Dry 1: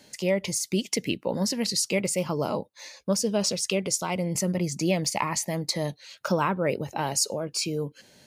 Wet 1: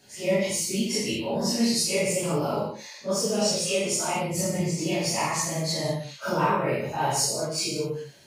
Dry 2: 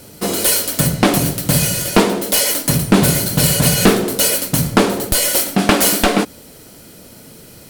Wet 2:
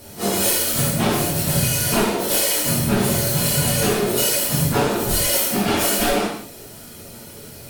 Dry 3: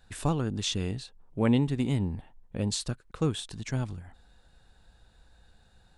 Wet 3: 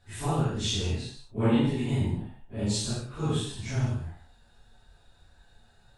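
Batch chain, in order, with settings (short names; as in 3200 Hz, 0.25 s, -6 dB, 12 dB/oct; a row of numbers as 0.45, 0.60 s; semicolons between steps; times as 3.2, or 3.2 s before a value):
phase scrambler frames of 0.1 s; compressor, threshold -17 dBFS; non-linear reverb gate 0.24 s falling, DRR -4 dB; gain -3.5 dB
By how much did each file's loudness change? +1.0, -4.0, +1.0 LU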